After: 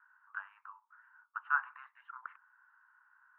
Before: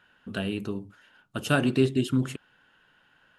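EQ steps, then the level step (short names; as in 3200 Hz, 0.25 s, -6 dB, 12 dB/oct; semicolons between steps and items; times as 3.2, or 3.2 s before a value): steep high-pass 940 Hz 72 dB/oct; steep low-pass 1500 Hz 36 dB/oct; +1.0 dB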